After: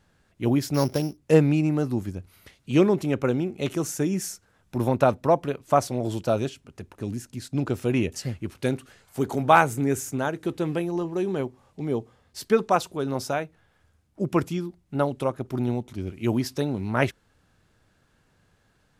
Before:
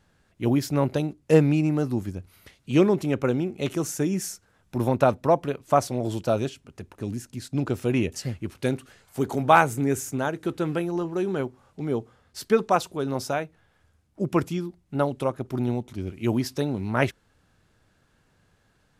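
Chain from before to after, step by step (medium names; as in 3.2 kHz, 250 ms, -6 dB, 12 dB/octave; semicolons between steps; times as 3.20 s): 0.74–1.17 s: sorted samples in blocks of 8 samples; 10.44–12.47 s: peaking EQ 1.4 kHz -7.5 dB 0.26 oct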